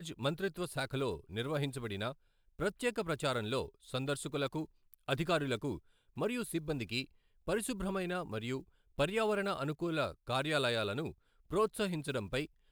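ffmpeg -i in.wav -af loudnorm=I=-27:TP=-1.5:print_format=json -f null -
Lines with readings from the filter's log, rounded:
"input_i" : "-36.3",
"input_tp" : "-17.5",
"input_lra" : "2.6",
"input_thresh" : "-46.6",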